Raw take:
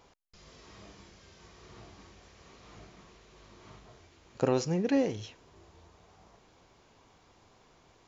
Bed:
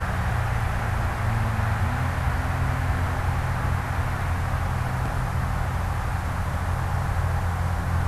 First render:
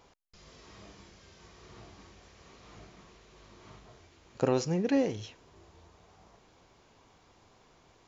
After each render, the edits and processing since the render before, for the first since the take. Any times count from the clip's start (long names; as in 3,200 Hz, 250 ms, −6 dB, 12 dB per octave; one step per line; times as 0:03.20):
no processing that can be heard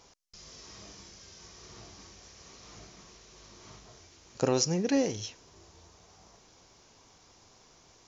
parametric band 5,800 Hz +13 dB 0.85 octaves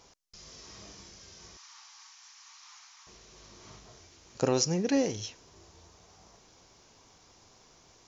0:01.57–0:03.07: Butterworth high-pass 830 Hz 72 dB per octave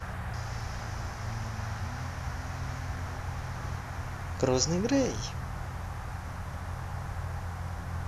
mix in bed −11.5 dB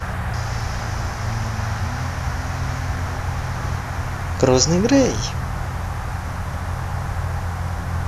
level +11.5 dB
brickwall limiter −1 dBFS, peak gain reduction 1.5 dB